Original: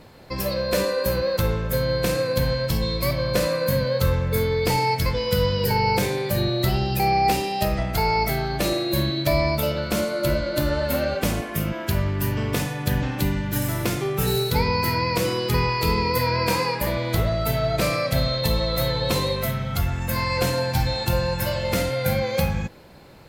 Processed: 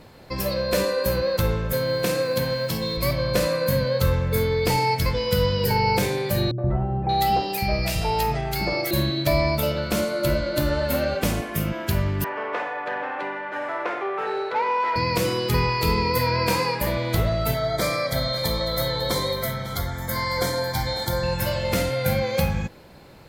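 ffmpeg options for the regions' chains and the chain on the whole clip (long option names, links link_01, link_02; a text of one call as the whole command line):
ffmpeg -i in.wav -filter_complex "[0:a]asettb=1/sr,asplit=3[link_01][link_02][link_03];[link_01]atrim=end=1.734[link_04];[link_02]atrim=start=1.73:end=2.97,asetpts=PTS-STARTPTS,afade=type=in:duration=0.004:curve=qsin,afade=type=out:start_time=1.236:duration=0.004:curve=qsin,highpass=150,acrusher=bits=9:dc=4:mix=0:aa=0.000001[link_05];[link_03]atrim=start=2.966[link_06];[link_04][link_05]acrossfade=duration=0.004:curve1=hsin:curve2=qsin[link_07];[link_07][link_06]acrossfade=duration=0.004:curve1=qsin:curve2=hsin,asettb=1/sr,asplit=3[link_08][link_09][link_10];[link_08]atrim=end=6.514[link_11];[link_09]atrim=start=6.51:end=8.91,asetpts=PTS-STARTPTS,afade=type=in:duration=0.004:curve=qsin,afade=type=out:start_time=2.396:duration=0.004:curve=qsin,acrossover=split=290|1300[link_12][link_13][link_14];[link_13]adelay=70[link_15];[link_14]adelay=580[link_16];[link_12][link_15][link_16]amix=inputs=3:normalize=0,atrim=end_sample=105840,acompressor=mode=upward:threshold=-26dB:ratio=2.5:attack=3.2:release=140:knee=2.83:detection=peak[link_17];[link_10]atrim=start=8.906[link_18];[link_11][link_17]acrossfade=duration=0.004:curve1=hsin:curve2=qsin[link_19];[link_19][link_18]acrossfade=duration=0.004:curve1=qsin:curve2=hsin,asettb=1/sr,asplit=3[link_20][link_21][link_22];[link_20]atrim=end=12.244[link_23];[link_21]atrim=start=12.24:end=14.96,asetpts=PTS-STARTPTS,afade=type=in:duration=0.004:curve=qsin,afade=type=out:start_time=2.716:duration=0.004:curve=qsin,acrossover=split=420 2100:gain=0.158 1 0.0794[link_24][link_25][link_26];[link_24][link_25][link_26]amix=inputs=3:normalize=0,asplit=2[link_27][link_28];[link_28]highpass=frequency=720:poles=1,volume=16dB,asoftclip=type=tanh:threshold=-14.5dB[link_29];[link_27][link_29]amix=inputs=2:normalize=0,lowpass=frequency=1900:poles=1,volume=-6dB,highpass=300,lowpass=7000[link_30];[link_22]atrim=start=14.956[link_31];[link_23][link_30]acrossfade=duration=0.004:curve1=hsin:curve2=qsin[link_32];[link_32][link_31]acrossfade=duration=0.004:curve1=qsin:curve2=hsin,asettb=1/sr,asplit=3[link_33][link_34][link_35];[link_33]atrim=end=17.544[link_36];[link_34]atrim=start=17.54:end=21.23,asetpts=PTS-STARTPTS,afade=type=in:duration=0.004:curve=qsin,afade=type=out:start_time=3.686:duration=0.004:curve=qsin,asuperstop=centerf=2700:order=20:qfactor=4.1,lowshelf=frequency=240:gain=-6.5,aecho=1:1:549:0.178,atrim=end_sample=162729[link_37];[link_35]atrim=start=21.226[link_38];[link_36][link_37]acrossfade=duration=0.004:curve1=hsin:curve2=qsin[link_39];[link_39][link_38]acrossfade=duration=0.004:curve1=qsin:curve2=hsin" out.wav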